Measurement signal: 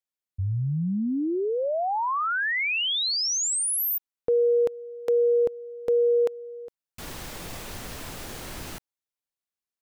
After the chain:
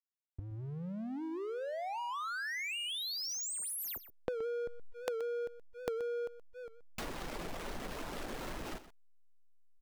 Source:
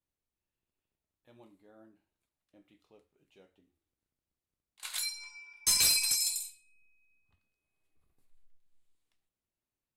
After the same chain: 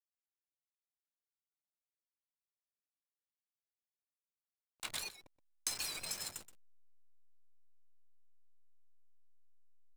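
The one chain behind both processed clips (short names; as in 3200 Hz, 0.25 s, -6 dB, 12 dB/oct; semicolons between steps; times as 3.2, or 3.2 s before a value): reverb removal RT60 0.68 s; bell 93 Hz -14 dB 1.2 oct; compressor 6:1, threshold -41 dBFS; backlash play -38 dBFS; echo 0.124 s -14.5 dB; record warp 78 rpm, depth 100 cents; gain +5.5 dB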